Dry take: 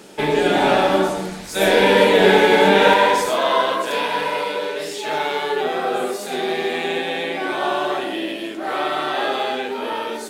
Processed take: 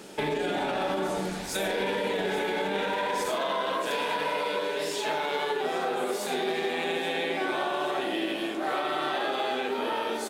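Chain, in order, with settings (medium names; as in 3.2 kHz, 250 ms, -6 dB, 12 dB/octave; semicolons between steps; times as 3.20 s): peak limiter -13.5 dBFS, peak gain reduction 11.5 dB; compression, threshold -23 dBFS, peak gain reduction 5.5 dB; feedback delay 824 ms, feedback 60%, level -14 dB; trim -2.5 dB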